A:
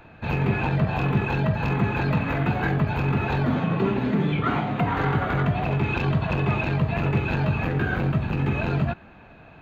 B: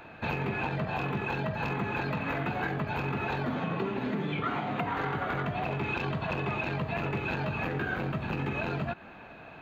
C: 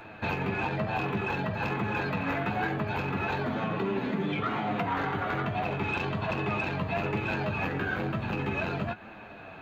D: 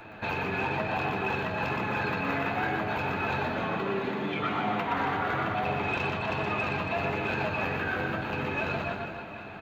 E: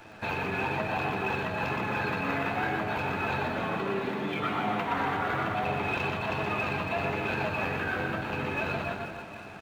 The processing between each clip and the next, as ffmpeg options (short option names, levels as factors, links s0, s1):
-af "lowshelf=f=160:g=-12,acompressor=threshold=0.0282:ratio=6,volume=1.33"
-af "asoftclip=type=tanh:threshold=0.1,flanger=delay=9:depth=1.8:regen=46:speed=1.1:shape=triangular,volume=2"
-filter_complex "[0:a]acrossover=split=380[s0][s1];[s0]alimiter=level_in=2.51:limit=0.0631:level=0:latency=1:release=195,volume=0.398[s2];[s2][s1]amix=inputs=2:normalize=0,aecho=1:1:120|276|478.8|742.4|1085:0.631|0.398|0.251|0.158|0.1"
-af "aeval=exprs='sgn(val(0))*max(abs(val(0))-0.00211,0)':c=same"